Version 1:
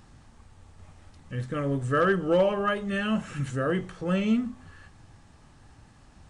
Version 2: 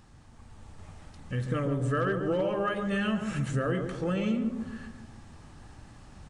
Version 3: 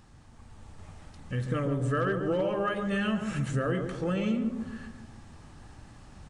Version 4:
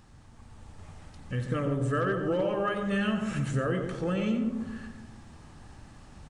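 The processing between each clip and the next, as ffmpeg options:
ffmpeg -i in.wav -filter_complex "[0:a]acompressor=threshold=-30dB:ratio=5,asplit=2[link_01][link_02];[link_02]adelay=141,lowpass=frequency=930:poles=1,volume=-5dB,asplit=2[link_03][link_04];[link_04]adelay=141,lowpass=frequency=930:poles=1,volume=0.54,asplit=2[link_05][link_06];[link_06]adelay=141,lowpass=frequency=930:poles=1,volume=0.54,asplit=2[link_07][link_08];[link_08]adelay=141,lowpass=frequency=930:poles=1,volume=0.54,asplit=2[link_09][link_10];[link_10]adelay=141,lowpass=frequency=930:poles=1,volume=0.54,asplit=2[link_11][link_12];[link_12]adelay=141,lowpass=frequency=930:poles=1,volume=0.54,asplit=2[link_13][link_14];[link_14]adelay=141,lowpass=frequency=930:poles=1,volume=0.54[link_15];[link_01][link_03][link_05][link_07][link_09][link_11][link_13][link_15]amix=inputs=8:normalize=0,dynaudnorm=framelen=130:gausssize=7:maxgain=5.5dB,volume=-2.5dB" out.wav
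ffmpeg -i in.wav -af anull out.wav
ffmpeg -i in.wav -af "aecho=1:1:91:0.251" out.wav

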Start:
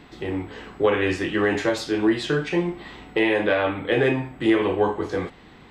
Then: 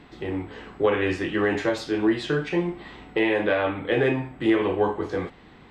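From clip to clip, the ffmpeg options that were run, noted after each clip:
ffmpeg -i in.wav -af "highshelf=frequency=5400:gain=-7,volume=-1.5dB" out.wav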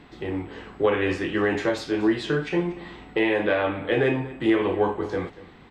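ffmpeg -i in.wav -af "aecho=1:1:236:0.119" out.wav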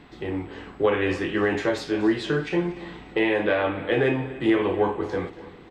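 ffmpeg -i in.wav -af "aecho=1:1:292|584|876|1168:0.112|0.0572|0.0292|0.0149" out.wav

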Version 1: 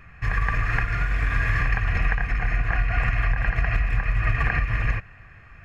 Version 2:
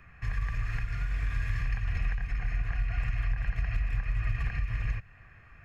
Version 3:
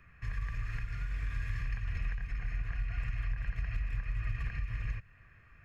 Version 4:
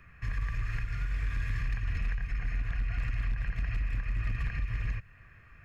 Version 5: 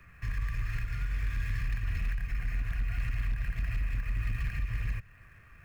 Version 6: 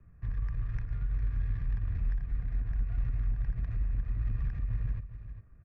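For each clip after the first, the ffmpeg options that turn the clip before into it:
ffmpeg -i in.wav -filter_complex "[0:a]acrossover=split=160|3000[link_01][link_02][link_03];[link_02]acompressor=threshold=-42dB:ratio=2.5[link_04];[link_01][link_04][link_03]amix=inputs=3:normalize=0,volume=-6.5dB" out.wav
ffmpeg -i in.wav -af "equalizer=frequency=770:width_type=o:width=0.4:gain=-7.5,volume=-5dB" out.wav
ffmpeg -i in.wav -af "volume=29dB,asoftclip=hard,volume=-29dB,volume=4dB" out.wav
ffmpeg -i in.wav -filter_complex "[0:a]acrossover=split=240|1400[link_01][link_02][link_03];[link_02]alimiter=level_in=24dB:limit=-24dB:level=0:latency=1:release=35,volume=-24dB[link_04];[link_03]acrusher=bits=3:mode=log:mix=0:aa=0.000001[link_05];[link_01][link_04][link_05]amix=inputs=3:normalize=0" out.wav
ffmpeg -i in.wav -af "adynamicsmooth=sensitivity=2.5:basefreq=510,aecho=1:1:405:0.282" out.wav

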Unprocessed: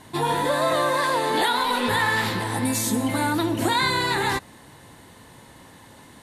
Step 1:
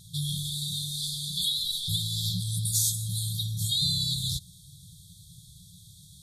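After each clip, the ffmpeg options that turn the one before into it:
ffmpeg -i in.wav -af "afftfilt=real='re*(1-between(b*sr/4096,190,3200))':imag='im*(1-between(b*sr/4096,190,3200))':win_size=4096:overlap=0.75,volume=1.5dB" out.wav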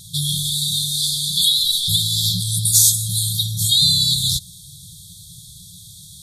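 ffmpeg -i in.wav -af "highshelf=frequency=2100:gain=7,volume=6.5dB" out.wav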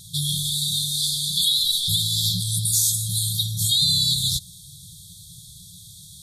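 ffmpeg -i in.wav -af "alimiter=level_in=6dB:limit=-1dB:release=50:level=0:latency=1,volume=-9dB" out.wav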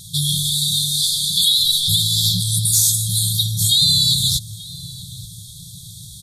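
ffmpeg -i in.wav -filter_complex "[0:a]acontrast=28,asplit=2[link_01][link_02];[link_02]adelay=884,lowpass=frequency=1500:poles=1,volume=-13dB,asplit=2[link_03][link_04];[link_04]adelay=884,lowpass=frequency=1500:poles=1,volume=0.51,asplit=2[link_05][link_06];[link_06]adelay=884,lowpass=frequency=1500:poles=1,volume=0.51,asplit=2[link_07][link_08];[link_08]adelay=884,lowpass=frequency=1500:poles=1,volume=0.51,asplit=2[link_09][link_10];[link_10]adelay=884,lowpass=frequency=1500:poles=1,volume=0.51[link_11];[link_01][link_03][link_05][link_07][link_09][link_11]amix=inputs=6:normalize=0" out.wav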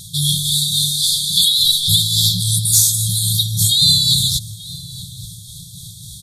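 ffmpeg -i in.wav -af "tremolo=f=3.6:d=0.37,volume=3.5dB" out.wav

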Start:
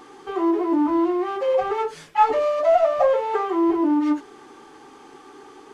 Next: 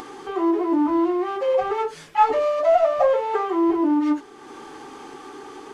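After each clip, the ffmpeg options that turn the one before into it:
ffmpeg -i in.wav -af "acompressor=mode=upward:threshold=-31dB:ratio=2.5" out.wav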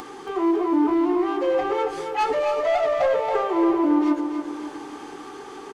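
ffmpeg -i in.wav -filter_complex "[0:a]acrossover=split=450|1500[link_01][link_02][link_03];[link_02]asoftclip=type=tanh:threshold=-23dB[link_04];[link_01][link_04][link_03]amix=inputs=3:normalize=0,aecho=1:1:277|554|831|1108|1385|1662:0.422|0.211|0.105|0.0527|0.0264|0.0132" out.wav

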